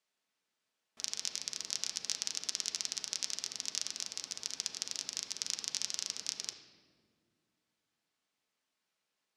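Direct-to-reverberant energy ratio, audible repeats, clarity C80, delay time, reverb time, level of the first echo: 3.0 dB, no echo, 9.0 dB, no echo, 1.9 s, no echo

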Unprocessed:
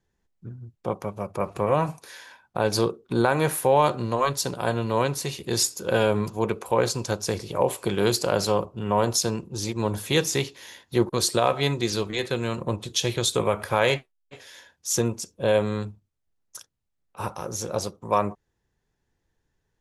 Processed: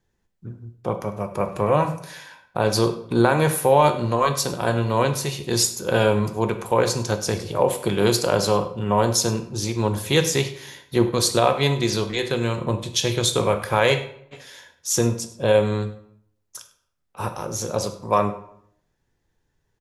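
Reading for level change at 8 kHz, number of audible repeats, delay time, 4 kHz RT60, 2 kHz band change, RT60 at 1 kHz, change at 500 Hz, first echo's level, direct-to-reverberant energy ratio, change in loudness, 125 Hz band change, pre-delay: +3.0 dB, 1, 100 ms, 0.50 s, +3.0 dB, 0.65 s, +3.0 dB, -19.5 dB, 7.5 dB, +3.5 dB, +5.0 dB, 8 ms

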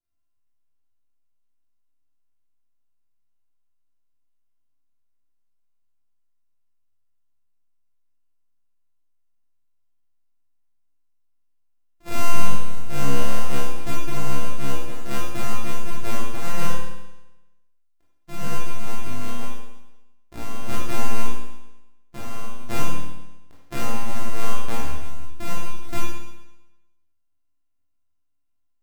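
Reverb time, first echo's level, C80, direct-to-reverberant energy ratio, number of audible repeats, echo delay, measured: 1.0 s, no echo, 2.5 dB, -7.0 dB, no echo, no echo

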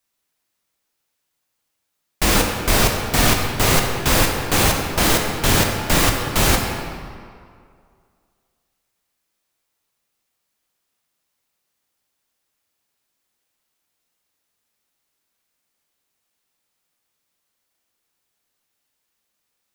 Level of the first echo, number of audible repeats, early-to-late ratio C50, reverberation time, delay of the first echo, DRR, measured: no echo, no echo, 3.0 dB, 2.2 s, no echo, 1.5 dB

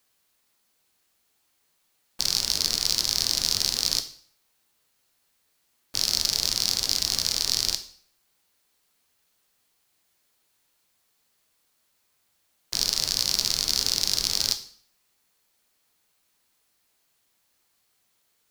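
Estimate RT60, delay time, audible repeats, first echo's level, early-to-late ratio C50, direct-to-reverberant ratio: 0.55 s, no echo, no echo, no echo, 12.5 dB, 7.5 dB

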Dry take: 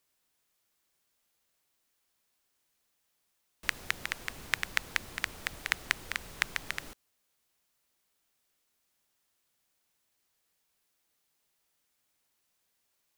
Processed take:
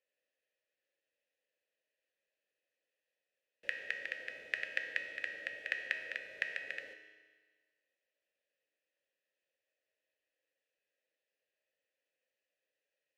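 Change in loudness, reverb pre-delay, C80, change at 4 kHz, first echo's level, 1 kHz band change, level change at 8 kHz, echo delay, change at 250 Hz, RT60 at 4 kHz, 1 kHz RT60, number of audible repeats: -5.0 dB, 3 ms, 8.0 dB, -10.5 dB, no echo, -17.5 dB, under -20 dB, no echo, -13.0 dB, 1.4 s, 1.5 s, no echo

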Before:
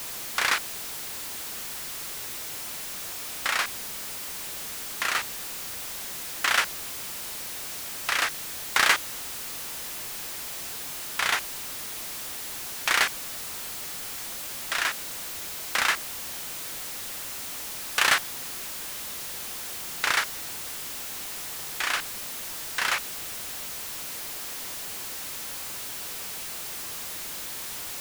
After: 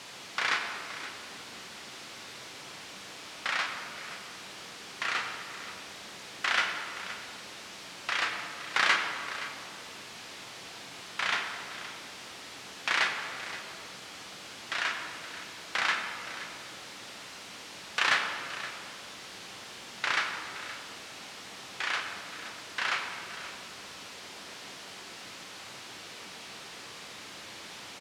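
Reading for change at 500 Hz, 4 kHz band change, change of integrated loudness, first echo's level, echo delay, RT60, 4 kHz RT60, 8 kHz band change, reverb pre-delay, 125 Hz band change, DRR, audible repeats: -3.0 dB, -4.0 dB, -5.5 dB, -14.5 dB, 521 ms, 2.6 s, 1.6 s, -12.5 dB, 5 ms, -5.0 dB, 2.5 dB, 1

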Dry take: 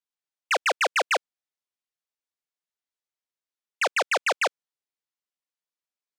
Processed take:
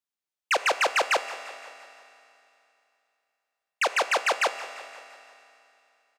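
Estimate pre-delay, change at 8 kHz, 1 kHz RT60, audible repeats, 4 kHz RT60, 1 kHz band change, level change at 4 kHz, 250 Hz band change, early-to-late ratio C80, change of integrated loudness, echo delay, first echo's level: 4 ms, +0.5 dB, 2.8 s, 4, 2.8 s, +0.5 dB, +0.5 dB, +0.5 dB, 11.0 dB, 0.0 dB, 172 ms, -17.5 dB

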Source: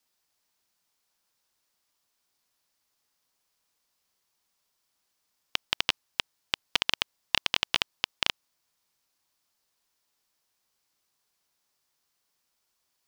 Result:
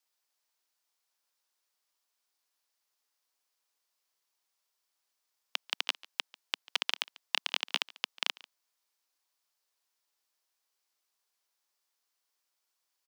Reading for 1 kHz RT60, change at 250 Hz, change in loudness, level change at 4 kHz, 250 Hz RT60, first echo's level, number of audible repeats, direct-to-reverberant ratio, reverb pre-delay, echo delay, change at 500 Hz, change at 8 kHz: no reverb, -13.0 dB, -5.0 dB, -5.0 dB, no reverb, -22.0 dB, 1, no reverb, no reverb, 143 ms, -7.0 dB, -5.0 dB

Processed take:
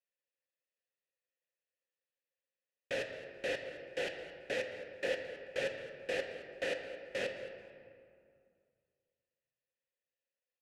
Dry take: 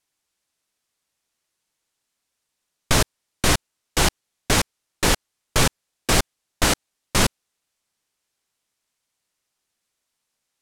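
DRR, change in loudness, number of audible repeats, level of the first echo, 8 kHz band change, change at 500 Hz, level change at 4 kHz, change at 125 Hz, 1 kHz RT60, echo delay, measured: 3.5 dB, -17.0 dB, 1, -17.0 dB, -32.0 dB, -8.0 dB, -21.0 dB, -31.5 dB, 2.3 s, 217 ms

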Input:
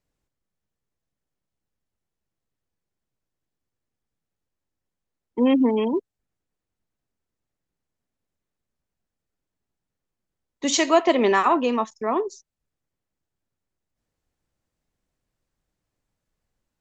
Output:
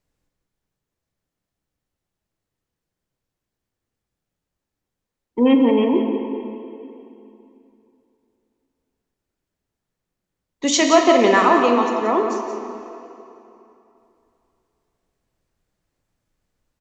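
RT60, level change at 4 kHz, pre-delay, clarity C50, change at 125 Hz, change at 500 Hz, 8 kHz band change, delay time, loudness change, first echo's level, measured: 2.9 s, +5.0 dB, 10 ms, 3.5 dB, no reading, +5.0 dB, +4.0 dB, 176 ms, +4.0 dB, -9.5 dB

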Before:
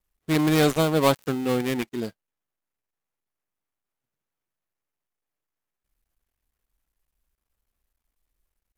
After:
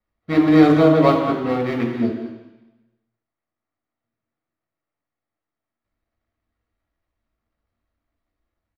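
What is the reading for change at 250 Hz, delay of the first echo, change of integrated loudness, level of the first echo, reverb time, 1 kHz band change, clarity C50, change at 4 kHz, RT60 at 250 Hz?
+8.5 dB, 173 ms, +6.5 dB, -14.0 dB, 1.1 s, +6.0 dB, 4.0 dB, -3.0 dB, 1.0 s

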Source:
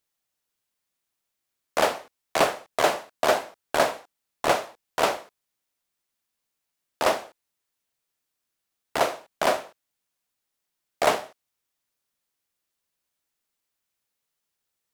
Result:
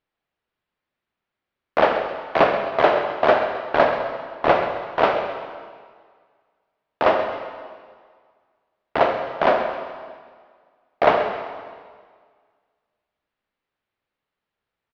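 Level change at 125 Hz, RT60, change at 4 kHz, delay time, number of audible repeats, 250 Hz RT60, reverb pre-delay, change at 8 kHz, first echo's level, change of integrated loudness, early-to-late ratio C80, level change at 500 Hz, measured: +6.5 dB, 1.8 s, -2.0 dB, 131 ms, 2, 1.8 s, 40 ms, under -20 dB, -12.5 dB, +4.5 dB, 6.0 dB, +6.5 dB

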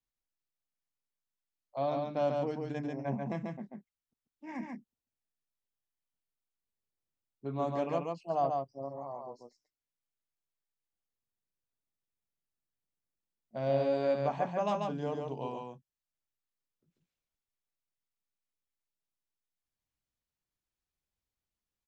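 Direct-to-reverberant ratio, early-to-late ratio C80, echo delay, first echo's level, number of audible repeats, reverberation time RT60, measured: no reverb, no reverb, 140 ms, -3.5 dB, 1, no reverb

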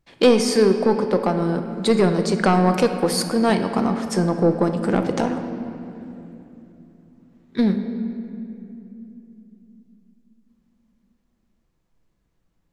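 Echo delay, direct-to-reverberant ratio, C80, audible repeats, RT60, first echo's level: no echo, 6.0 dB, 8.5 dB, no echo, 3.0 s, no echo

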